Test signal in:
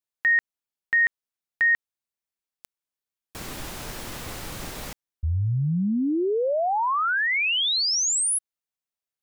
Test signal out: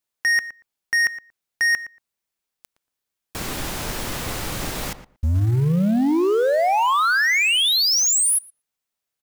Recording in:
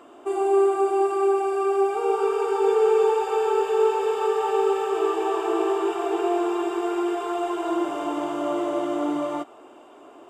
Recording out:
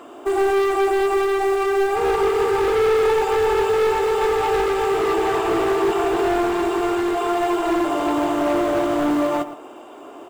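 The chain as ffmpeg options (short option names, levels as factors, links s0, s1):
-filter_complex "[0:a]volume=16.8,asoftclip=hard,volume=0.0596,asplit=2[s0][s1];[s1]adelay=116,lowpass=f=1800:p=1,volume=0.251,asplit=2[s2][s3];[s3]adelay=116,lowpass=f=1800:p=1,volume=0.15[s4];[s0][s2][s4]amix=inputs=3:normalize=0,acrusher=bits=7:mode=log:mix=0:aa=0.000001,volume=2.37"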